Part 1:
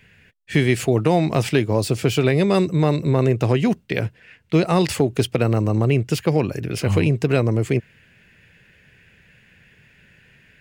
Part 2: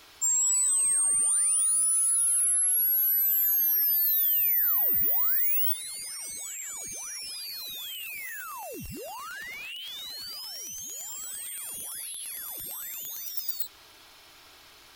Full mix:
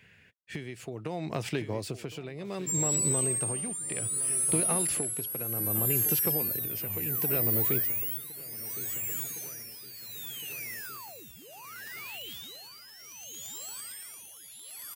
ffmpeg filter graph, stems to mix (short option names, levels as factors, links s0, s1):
-filter_complex "[0:a]acompressor=threshold=0.0794:ratio=6,volume=0.596,asplit=2[s0][s1];[s1]volume=0.2[s2];[1:a]adelay=2450,volume=0.668,asplit=2[s3][s4];[s4]volume=0.376[s5];[s2][s5]amix=inputs=2:normalize=0,aecho=0:1:1062|2124|3186|4248|5310|6372|7434|8496|9558:1|0.59|0.348|0.205|0.121|0.0715|0.0422|0.0249|0.0147[s6];[s0][s3][s6]amix=inputs=3:normalize=0,highpass=80,equalizer=f=170:w=0.65:g=-2,tremolo=f=0.66:d=0.65"